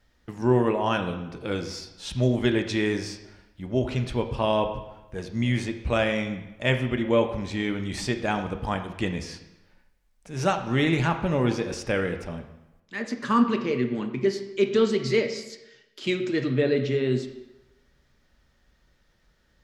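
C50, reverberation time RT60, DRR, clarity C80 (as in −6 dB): 9.0 dB, 1.0 s, 6.0 dB, 11.5 dB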